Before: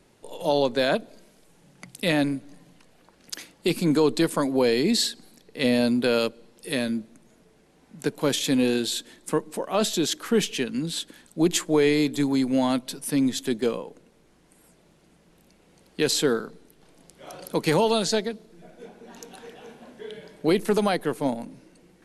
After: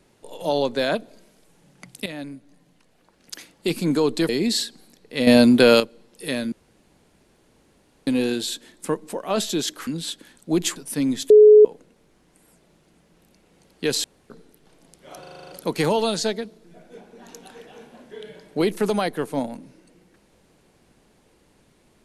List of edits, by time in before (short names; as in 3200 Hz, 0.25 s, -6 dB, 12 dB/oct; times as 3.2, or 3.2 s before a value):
2.06–3.7 fade in, from -14 dB
4.29–4.73 cut
5.71–6.24 gain +8.5 dB
6.96–8.51 room tone
10.31–10.76 cut
11.65–12.92 cut
13.46–13.81 bleep 424 Hz -6 dBFS
16.2–16.46 room tone
17.36 stutter 0.04 s, 8 plays